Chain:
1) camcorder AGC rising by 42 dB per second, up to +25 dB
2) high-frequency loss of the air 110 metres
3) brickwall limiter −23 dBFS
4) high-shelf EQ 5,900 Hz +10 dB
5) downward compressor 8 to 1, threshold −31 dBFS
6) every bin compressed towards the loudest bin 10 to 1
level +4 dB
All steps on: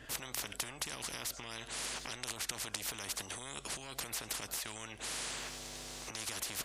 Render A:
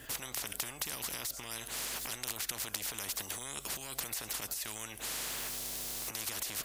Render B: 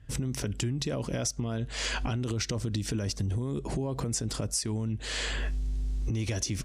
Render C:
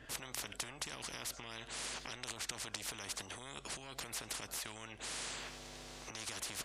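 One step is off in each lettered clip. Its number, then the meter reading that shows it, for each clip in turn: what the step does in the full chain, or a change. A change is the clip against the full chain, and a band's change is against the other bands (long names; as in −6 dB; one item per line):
2, 8 kHz band +2.0 dB
6, 125 Hz band +20.0 dB
4, change in integrated loudness −3.5 LU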